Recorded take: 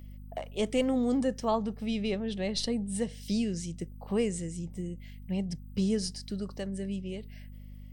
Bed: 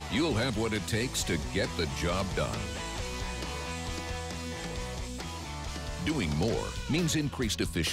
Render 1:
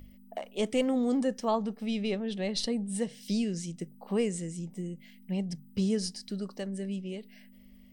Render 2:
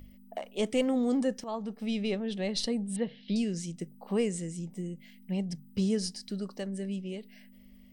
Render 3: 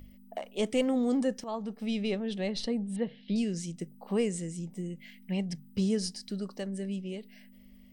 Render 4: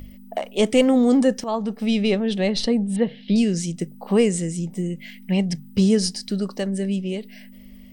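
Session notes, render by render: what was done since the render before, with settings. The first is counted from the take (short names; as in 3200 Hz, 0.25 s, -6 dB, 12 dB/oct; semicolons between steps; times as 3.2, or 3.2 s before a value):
notches 50/100/150 Hz
1.44–1.84 fade in, from -12.5 dB; 2.96–3.36 steep low-pass 4100 Hz 48 dB/oct
2.49–3.38 high shelf 5200 Hz -11.5 dB; 4.9–5.68 bell 2000 Hz +6.5 dB 1.8 oct
gain +11 dB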